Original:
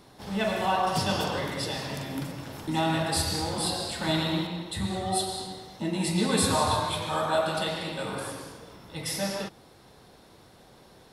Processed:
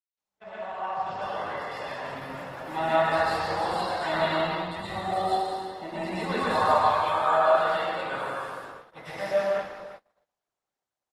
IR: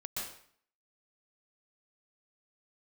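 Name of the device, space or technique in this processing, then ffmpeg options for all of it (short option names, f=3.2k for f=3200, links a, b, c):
speakerphone in a meeting room: -filter_complex "[0:a]acrossover=split=5000[a][b];[b]acompressor=threshold=-43dB:ratio=4:attack=1:release=60[c];[a][c]amix=inputs=2:normalize=0,acrossover=split=500 2200:gain=0.141 1 0.141[d][e][f];[d][e][f]amix=inputs=3:normalize=0,aecho=1:1:349|698|1047:0.168|0.0537|0.0172[g];[1:a]atrim=start_sample=2205[h];[g][h]afir=irnorm=-1:irlink=0,asplit=2[i][j];[j]adelay=190,highpass=300,lowpass=3.4k,asoftclip=type=hard:threshold=-22.5dB,volume=-12dB[k];[i][k]amix=inputs=2:normalize=0,dynaudnorm=f=310:g=11:m=16dB,agate=range=-39dB:threshold=-35dB:ratio=16:detection=peak,volume=-7dB" -ar 48000 -c:a libopus -b:a 16k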